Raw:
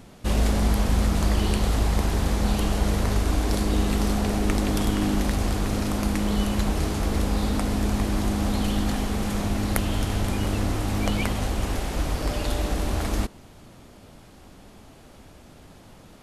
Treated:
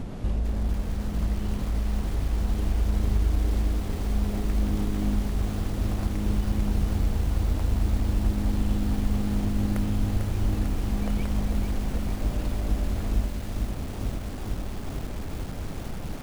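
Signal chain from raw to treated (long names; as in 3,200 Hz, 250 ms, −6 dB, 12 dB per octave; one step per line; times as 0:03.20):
spectral tilt −2.5 dB per octave
downward compressor 4 to 1, threshold −36 dBFS, peak gain reduction 24 dB
feedback echo at a low word length 447 ms, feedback 80%, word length 8 bits, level −5 dB
level +7 dB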